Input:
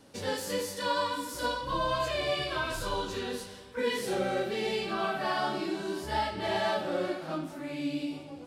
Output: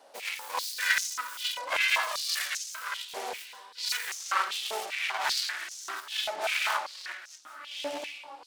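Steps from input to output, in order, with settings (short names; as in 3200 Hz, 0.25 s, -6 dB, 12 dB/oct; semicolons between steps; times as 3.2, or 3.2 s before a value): self-modulated delay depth 0.76 ms; random-step tremolo; stepped high-pass 5.1 Hz 680–6100 Hz; gain +2.5 dB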